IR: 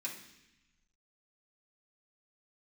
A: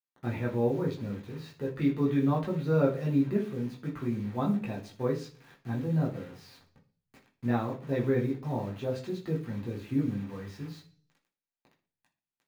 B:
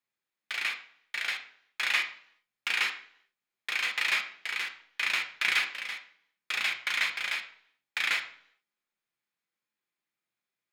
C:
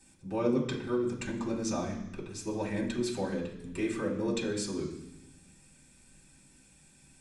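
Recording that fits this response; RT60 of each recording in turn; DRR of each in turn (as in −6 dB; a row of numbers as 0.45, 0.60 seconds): C; 0.40, 0.65, 0.90 seconds; −3.5, 4.5, −6.0 decibels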